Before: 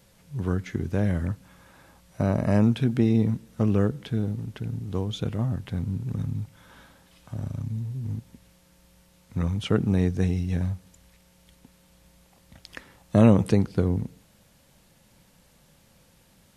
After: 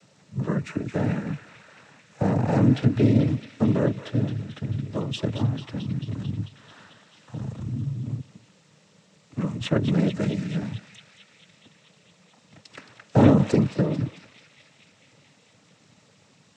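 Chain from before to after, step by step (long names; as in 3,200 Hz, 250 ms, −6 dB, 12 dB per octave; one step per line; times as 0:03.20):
feedback echo with a band-pass in the loop 221 ms, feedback 78%, band-pass 2,900 Hz, level −7.5 dB
cochlear-implant simulation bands 12
level +2 dB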